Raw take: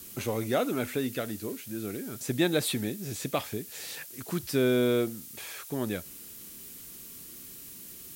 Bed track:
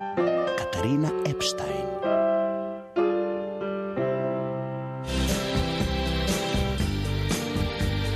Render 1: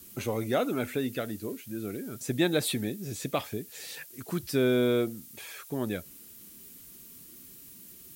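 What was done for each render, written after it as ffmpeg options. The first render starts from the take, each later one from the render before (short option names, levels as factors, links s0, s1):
-af "afftdn=nr=6:nf=-46"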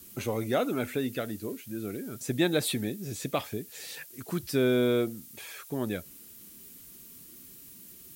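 -af anull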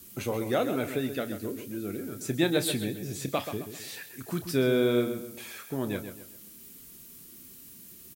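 -filter_complex "[0:a]asplit=2[s0][s1];[s1]adelay=30,volume=0.251[s2];[s0][s2]amix=inputs=2:normalize=0,asplit=2[s3][s4];[s4]adelay=132,lowpass=f=3800:p=1,volume=0.355,asplit=2[s5][s6];[s6]adelay=132,lowpass=f=3800:p=1,volume=0.38,asplit=2[s7][s8];[s8]adelay=132,lowpass=f=3800:p=1,volume=0.38,asplit=2[s9][s10];[s10]adelay=132,lowpass=f=3800:p=1,volume=0.38[s11];[s3][s5][s7][s9][s11]amix=inputs=5:normalize=0"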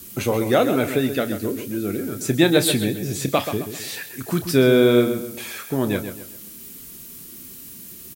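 -af "volume=2.99,alimiter=limit=0.794:level=0:latency=1"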